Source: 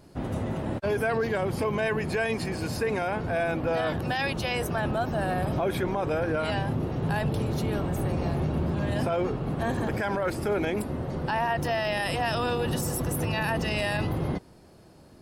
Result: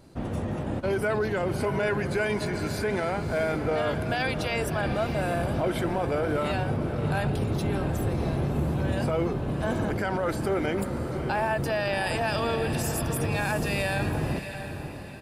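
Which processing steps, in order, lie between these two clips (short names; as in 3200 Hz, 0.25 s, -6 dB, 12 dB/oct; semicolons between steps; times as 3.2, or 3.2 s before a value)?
pitch shift -1 st; diffused feedback echo 0.657 s, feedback 40%, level -9 dB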